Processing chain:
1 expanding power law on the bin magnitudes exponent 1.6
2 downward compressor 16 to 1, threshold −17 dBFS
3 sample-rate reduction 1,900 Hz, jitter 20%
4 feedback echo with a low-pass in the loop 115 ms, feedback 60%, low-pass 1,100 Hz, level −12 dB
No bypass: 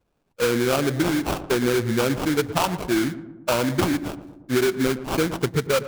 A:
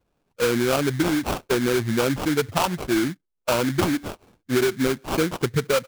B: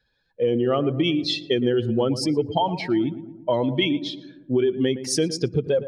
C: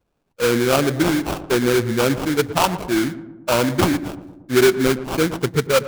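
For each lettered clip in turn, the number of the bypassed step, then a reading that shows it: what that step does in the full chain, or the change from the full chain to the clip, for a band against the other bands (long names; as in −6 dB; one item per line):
4, echo-to-direct ratio −15.0 dB to none audible
3, 2 kHz band −6.5 dB
2, average gain reduction 2.5 dB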